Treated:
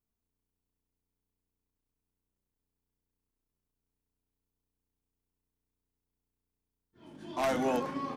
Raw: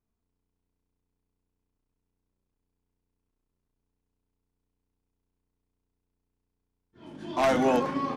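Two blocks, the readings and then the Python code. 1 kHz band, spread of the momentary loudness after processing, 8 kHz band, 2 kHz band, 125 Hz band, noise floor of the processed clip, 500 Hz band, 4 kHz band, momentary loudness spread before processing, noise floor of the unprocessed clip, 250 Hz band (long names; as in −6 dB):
−6.5 dB, 14 LU, −3.5 dB, −6.0 dB, −6.5 dB, below −85 dBFS, −6.5 dB, −5.5 dB, 14 LU, −83 dBFS, −6.5 dB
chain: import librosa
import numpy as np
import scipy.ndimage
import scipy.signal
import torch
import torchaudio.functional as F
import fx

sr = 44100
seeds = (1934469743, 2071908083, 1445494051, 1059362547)

y = fx.high_shelf(x, sr, hz=10000.0, db=11.0)
y = y * librosa.db_to_amplitude(-6.5)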